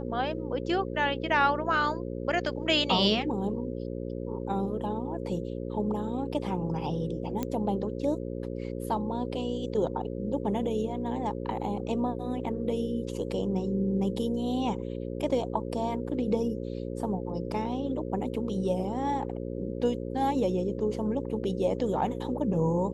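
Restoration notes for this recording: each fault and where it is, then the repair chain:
mains buzz 60 Hz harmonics 9 −35 dBFS
0:07.43: click −17 dBFS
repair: click removal
hum removal 60 Hz, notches 9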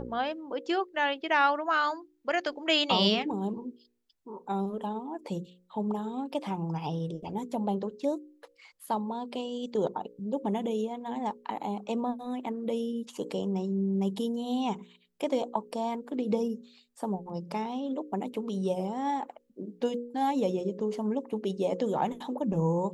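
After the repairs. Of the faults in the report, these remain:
none of them is left

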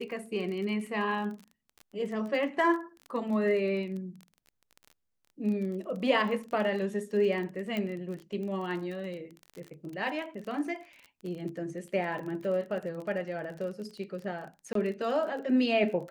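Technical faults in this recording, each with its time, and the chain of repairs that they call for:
surface crackle 31 per second −37 dBFS
0:07.77: click −21 dBFS
0:14.73–0:14.75: drop-out 23 ms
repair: click removal
repair the gap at 0:14.73, 23 ms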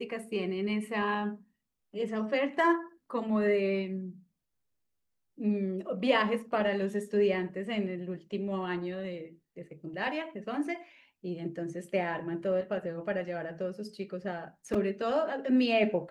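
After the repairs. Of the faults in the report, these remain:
none of them is left

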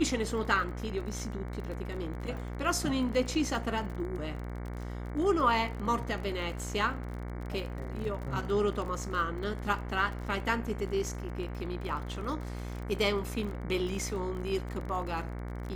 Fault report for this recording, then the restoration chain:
mains buzz 60 Hz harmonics 38 −38 dBFS
surface crackle 32 per second −37 dBFS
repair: click removal
hum removal 60 Hz, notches 38

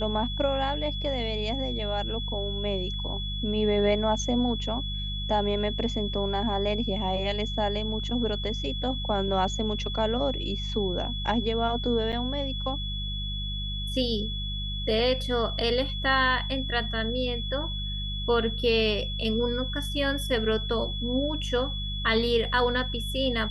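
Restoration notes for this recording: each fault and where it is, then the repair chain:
mains hum 50 Hz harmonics 4 −33 dBFS
whistle 3,400 Hz −34 dBFS
0:12.12–0:12.13: drop-out 7.9 ms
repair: notch filter 3,400 Hz, Q 30
hum removal 50 Hz, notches 4
repair the gap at 0:12.12, 7.9 ms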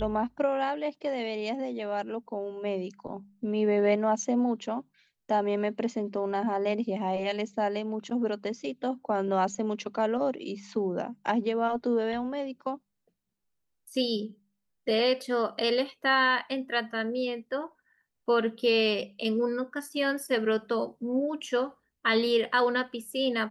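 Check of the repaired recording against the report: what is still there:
none of them is left

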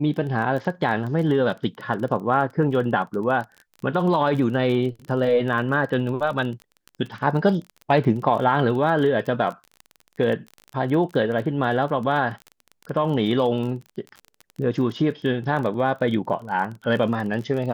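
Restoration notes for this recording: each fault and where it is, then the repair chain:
surface crackle 25 per second −30 dBFS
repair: click removal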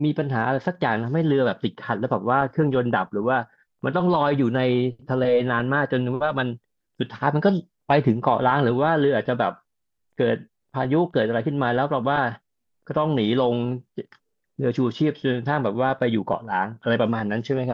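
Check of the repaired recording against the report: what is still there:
none of them is left

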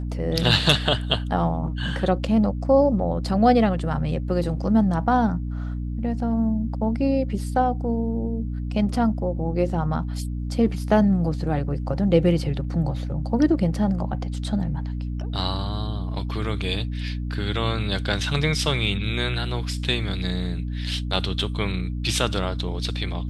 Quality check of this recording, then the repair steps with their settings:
mains hum 60 Hz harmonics 5 −28 dBFS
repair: hum removal 60 Hz, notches 5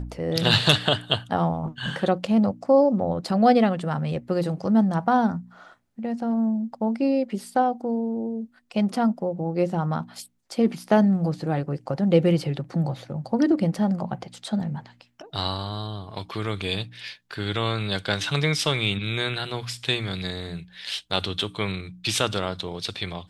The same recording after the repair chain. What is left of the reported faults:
none of them is left

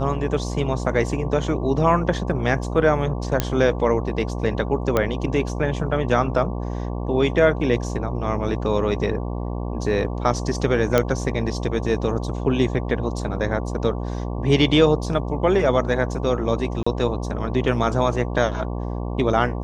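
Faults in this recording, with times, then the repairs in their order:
mains buzz 60 Hz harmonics 19 −27 dBFS
0:03.40: click −4 dBFS
0:04.97: click −7 dBFS
0:10.98: click −4 dBFS
0:16.83–0:16.86: drop-out 35 ms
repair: click removal
hum removal 60 Hz, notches 19
repair the gap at 0:16.83, 35 ms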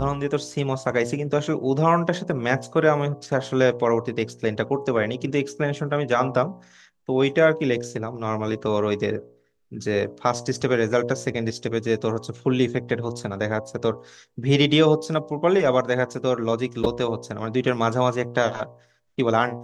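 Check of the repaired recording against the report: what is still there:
none of them is left

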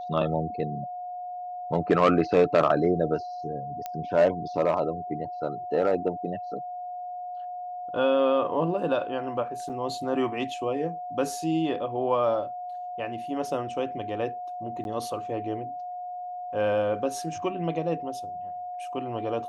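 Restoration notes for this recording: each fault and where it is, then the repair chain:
whistle 720 Hz −33 dBFS
0:03.86: click −19 dBFS
0:09.69–0:09.70: drop-out 6.7 ms
0:14.84–0:14.85: drop-out 11 ms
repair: click removal
notch filter 720 Hz, Q 30
repair the gap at 0:09.69, 6.7 ms
repair the gap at 0:14.84, 11 ms

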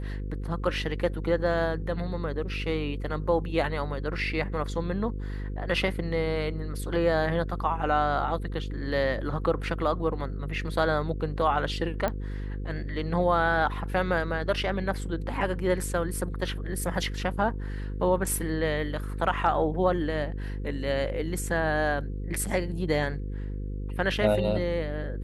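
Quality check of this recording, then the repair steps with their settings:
mains buzz 50 Hz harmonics 10 −33 dBFS
0:12.08: click −15 dBFS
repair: click removal
hum removal 50 Hz, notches 10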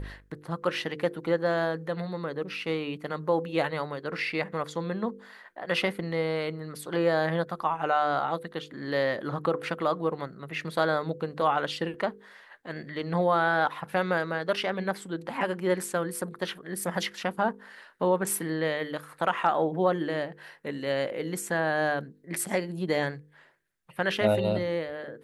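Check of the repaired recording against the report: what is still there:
0:12.08: click

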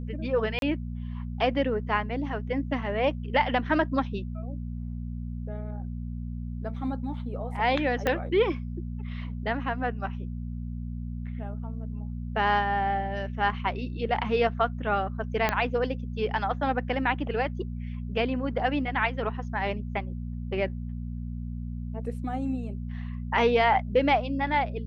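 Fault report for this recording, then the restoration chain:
mains hum 60 Hz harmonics 4 −34 dBFS
0:00.59–0:00.62: drop-out 32 ms
0:08.07: click −12 dBFS
0:15.49: click −10 dBFS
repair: click removal
hum removal 60 Hz, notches 4
repair the gap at 0:00.59, 32 ms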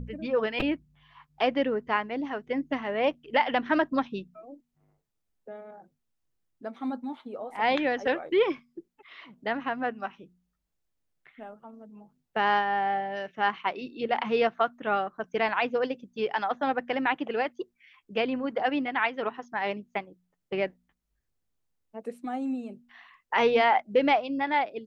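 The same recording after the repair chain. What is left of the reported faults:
0:08.07: click
0:15.49: click

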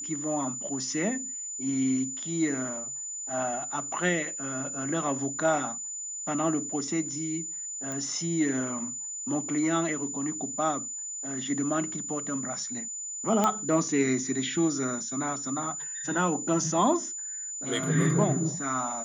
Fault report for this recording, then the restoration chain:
whistle 7,000 Hz −34 dBFS
0:07.92: click −21 dBFS
0:13.44: click −11 dBFS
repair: click removal
notch filter 7,000 Hz, Q 30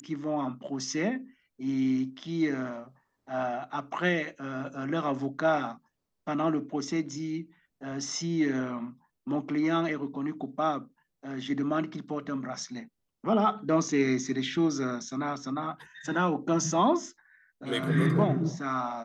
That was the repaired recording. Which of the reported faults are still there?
none of them is left

